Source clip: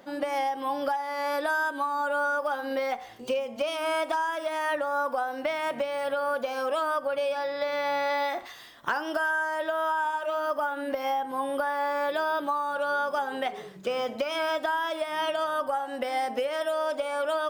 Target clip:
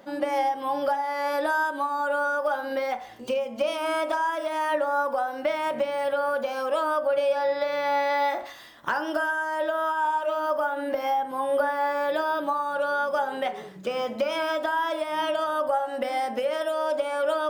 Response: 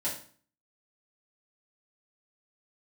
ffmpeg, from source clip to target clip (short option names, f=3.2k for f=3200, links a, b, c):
-filter_complex "[0:a]asplit=2[a][b];[1:a]atrim=start_sample=2205,lowpass=2.3k[c];[b][c]afir=irnorm=-1:irlink=0,volume=-11.5dB[d];[a][d]amix=inputs=2:normalize=0"